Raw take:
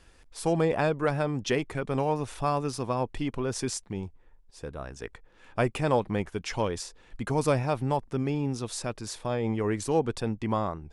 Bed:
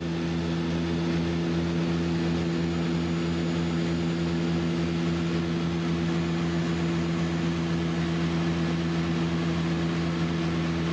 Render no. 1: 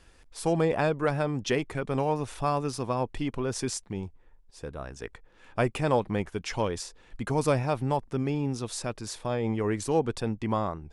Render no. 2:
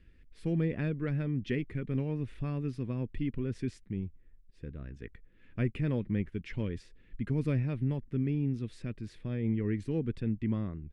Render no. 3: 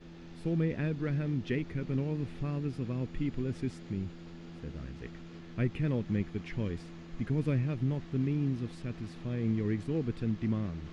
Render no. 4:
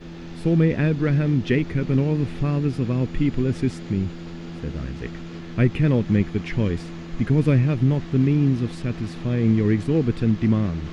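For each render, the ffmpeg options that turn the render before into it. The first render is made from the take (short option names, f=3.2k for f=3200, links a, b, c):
-af anull
-af "firequalizer=gain_entry='entry(230,0);entry(790,-26);entry(1900,-6);entry(6100,-26)':delay=0.05:min_phase=1"
-filter_complex "[1:a]volume=-21dB[a];[0:a][a]amix=inputs=2:normalize=0"
-af "volume=12dB"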